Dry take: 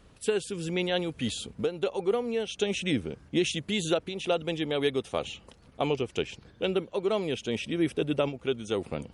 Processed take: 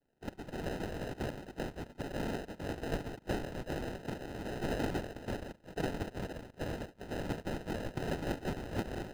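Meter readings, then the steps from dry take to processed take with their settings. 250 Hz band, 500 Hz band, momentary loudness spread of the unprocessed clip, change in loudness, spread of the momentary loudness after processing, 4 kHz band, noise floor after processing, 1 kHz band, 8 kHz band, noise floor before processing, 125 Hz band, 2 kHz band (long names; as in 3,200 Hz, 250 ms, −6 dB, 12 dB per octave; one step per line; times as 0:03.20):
−8.5 dB, −11.5 dB, 5 LU, −9.5 dB, 6 LU, −15.0 dB, −62 dBFS, −5.0 dB, −12.5 dB, −57 dBFS, −3.5 dB, −7.5 dB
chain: lower of the sound and its delayed copy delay 0.39 ms
on a send: feedback delay with all-pass diffusion 465 ms, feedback 71%, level −14 dB
on the sum: noise reduction from a noise print of the clip's start 29 dB
in parallel at −2.5 dB: brickwall limiter −24 dBFS, peak gain reduction 9 dB
on the sum: brick-wall band-stop 300–4,300 Hz
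soft clipping −32 dBFS, distortion −10 dB
downward compressor 10 to 1, threshold −44 dBFS, peak gain reduction 10.5 dB
flat-topped bell 500 Hz +11.5 dB
cochlear-implant simulation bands 1
decimation without filtering 39×
high-shelf EQ 5,200 Hz −9 dB
level +6 dB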